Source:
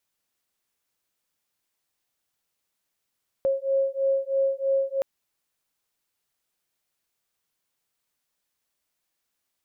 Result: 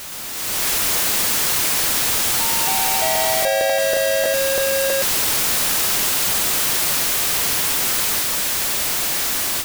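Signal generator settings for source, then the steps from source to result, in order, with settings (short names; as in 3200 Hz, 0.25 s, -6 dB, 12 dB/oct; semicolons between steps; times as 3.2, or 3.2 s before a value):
beating tones 541 Hz, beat 3.1 Hz, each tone -24.5 dBFS 1.57 s
infinite clipping; AGC gain up to 12 dB; echoes that change speed 0.117 s, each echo +3 st, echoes 3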